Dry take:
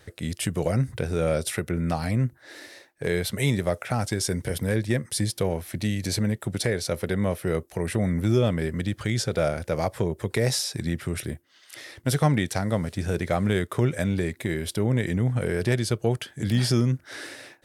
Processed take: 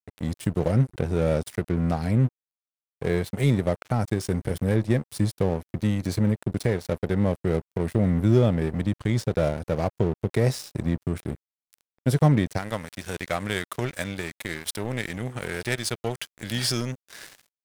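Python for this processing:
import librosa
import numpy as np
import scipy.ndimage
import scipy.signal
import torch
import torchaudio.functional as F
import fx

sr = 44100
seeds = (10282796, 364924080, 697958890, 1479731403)

y = fx.tilt_shelf(x, sr, db=fx.steps((0.0, 4.5), (12.57, -5.5)), hz=790.0)
y = np.sign(y) * np.maximum(np.abs(y) - 10.0 ** (-34.0 / 20.0), 0.0)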